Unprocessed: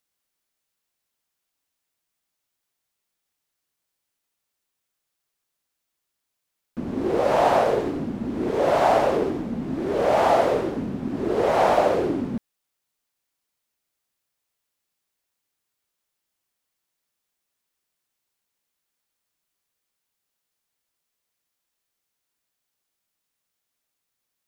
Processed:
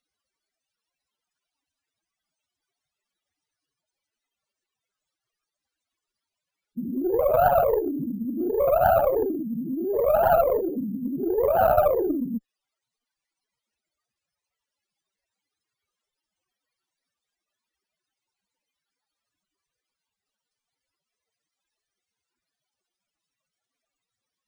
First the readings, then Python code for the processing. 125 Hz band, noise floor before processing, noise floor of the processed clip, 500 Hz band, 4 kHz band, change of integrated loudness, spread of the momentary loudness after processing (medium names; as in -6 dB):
-3.0 dB, -81 dBFS, under -85 dBFS, 0.0 dB, under -15 dB, -1.0 dB, 10 LU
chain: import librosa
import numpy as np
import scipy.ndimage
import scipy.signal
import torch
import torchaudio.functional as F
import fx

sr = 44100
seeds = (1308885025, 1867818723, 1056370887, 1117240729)

y = fx.spec_expand(x, sr, power=3.9)
y = fx.cheby_harmonics(y, sr, harmonics=(2, 8), levels_db=(-8, -34), full_scale_db=-9.0)
y = np.repeat(scipy.signal.resample_poly(y, 1, 3), 3)[:len(y)]